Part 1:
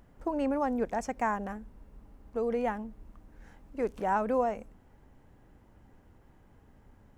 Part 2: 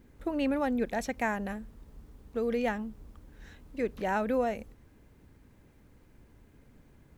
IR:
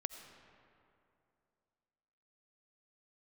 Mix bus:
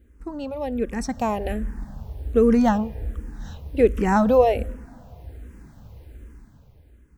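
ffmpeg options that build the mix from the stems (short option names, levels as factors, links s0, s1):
-filter_complex "[0:a]agate=range=0.0224:threshold=0.00355:ratio=3:detection=peak,volume=0.596[s0];[1:a]equalizer=f=2200:w=5:g=-3.5,volume=0.75,asplit=2[s1][s2];[s2]volume=0.251[s3];[2:a]atrim=start_sample=2205[s4];[s3][s4]afir=irnorm=-1:irlink=0[s5];[s0][s1][s5]amix=inputs=3:normalize=0,equalizer=f=62:w=1.1:g=11.5,dynaudnorm=f=260:g=9:m=5.62,asplit=2[s6][s7];[s7]afreqshift=-1.3[s8];[s6][s8]amix=inputs=2:normalize=1"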